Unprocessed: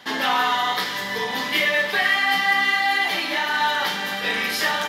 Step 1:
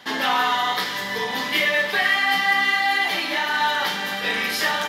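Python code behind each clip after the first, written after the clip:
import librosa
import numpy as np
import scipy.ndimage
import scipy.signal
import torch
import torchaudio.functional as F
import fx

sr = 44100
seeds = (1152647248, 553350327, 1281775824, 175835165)

y = x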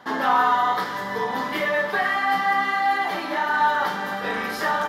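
y = fx.high_shelf_res(x, sr, hz=1800.0, db=-10.0, q=1.5)
y = y * librosa.db_to_amplitude(1.0)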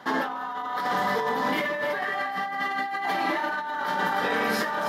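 y = scipy.signal.sosfilt(scipy.signal.butter(2, 77.0, 'highpass', fs=sr, output='sos'), x)
y = fx.echo_alternate(y, sr, ms=149, hz=830.0, feedback_pct=54, wet_db=-2.5)
y = fx.over_compress(y, sr, threshold_db=-26.0, ratio=-1.0)
y = y * librosa.db_to_amplitude(-2.0)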